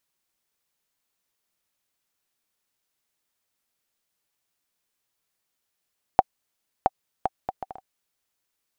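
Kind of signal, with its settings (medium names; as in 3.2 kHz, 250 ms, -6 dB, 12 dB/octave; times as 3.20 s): bouncing ball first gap 0.67 s, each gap 0.59, 765 Hz, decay 33 ms -1.5 dBFS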